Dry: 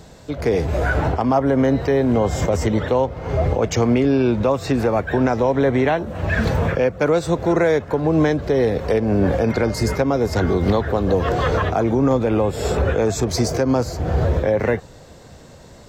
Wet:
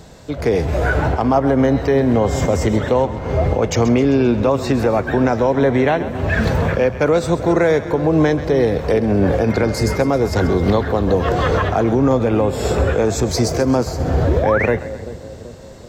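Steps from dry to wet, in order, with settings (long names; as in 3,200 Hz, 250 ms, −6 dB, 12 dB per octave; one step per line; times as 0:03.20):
echo with a time of its own for lows and highs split 630 Hz, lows 385 ms, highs 132 ms, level −13 dB
sound drawn into the spectrogram rise, 0:14.27–0:14.66, 260–2,600 Hz −23 dBFS
level +2 dB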